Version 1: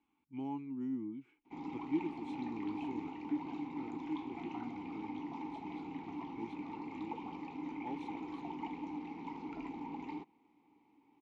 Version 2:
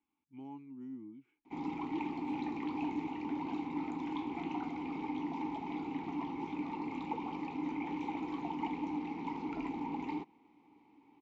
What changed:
speech −7.0 dB
background +5.0 dB

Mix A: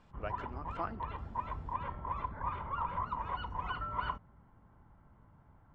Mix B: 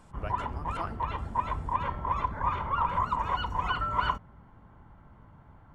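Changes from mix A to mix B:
background +7.5 dB
master: remove high-frequency loss of the air 190 metres

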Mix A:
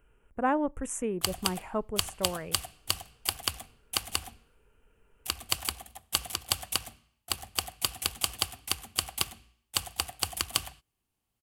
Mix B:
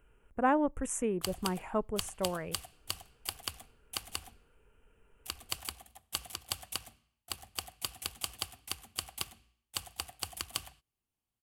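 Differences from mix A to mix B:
speech: send −6.0 dB
background −8.0 dB

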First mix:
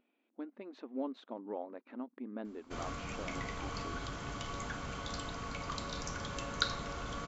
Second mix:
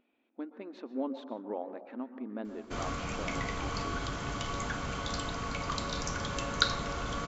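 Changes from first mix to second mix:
speech: send on
background +5.5 dB

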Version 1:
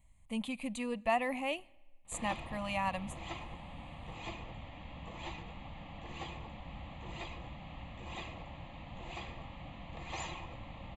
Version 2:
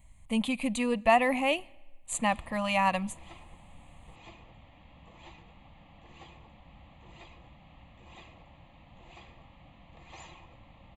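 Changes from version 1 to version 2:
speech +8.5 dB
background −7.5 dB

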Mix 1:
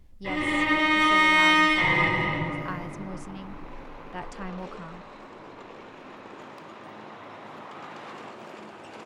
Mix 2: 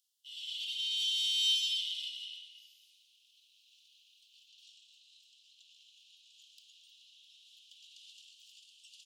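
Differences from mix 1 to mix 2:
speech: muted
master: add Butterworth high-pass 2,900 Hz 96 dB per octave

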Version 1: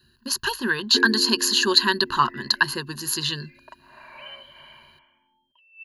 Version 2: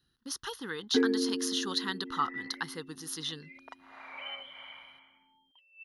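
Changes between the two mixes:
speech −11.5 dB
master: remove EQ curve with evenly spaced ripples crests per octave 1.4, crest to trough 15 dB

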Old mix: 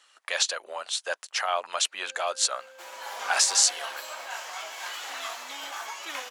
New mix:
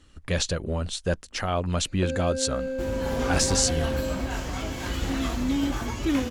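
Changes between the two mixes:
speech −3.5 dB
first sound +10.0 dB
master: remove high-pass filter 710 Hz 24 dB per octave

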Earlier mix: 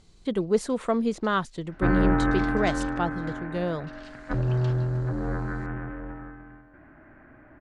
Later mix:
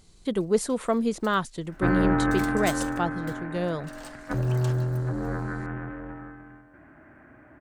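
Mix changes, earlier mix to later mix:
first sound: remove flat-topped band-pass 3,300 Hz, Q 1.1
second sound: add high-pass filter 60 Hz
master: remove high-frequency loss of the air 57 metres

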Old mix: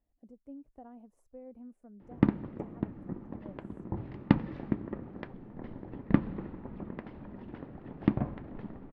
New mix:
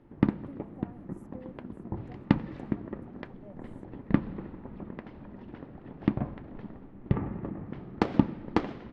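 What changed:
background: entry −2.00 s
master: add high-shelf EQ 6,800 Hz +10.5 dB

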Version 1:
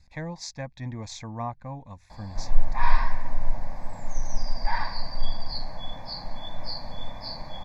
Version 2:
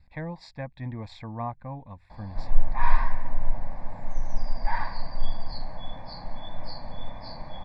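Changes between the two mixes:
speech: add moving average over 7 samples
background: add high-frequency loss of the air 230 metres

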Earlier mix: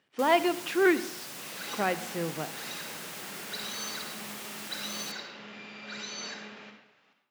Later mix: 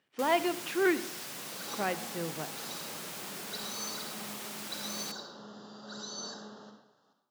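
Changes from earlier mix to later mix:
speech −4.0 dB
second sound: add Butterworth band-reject 2,300 Hz, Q 0.87

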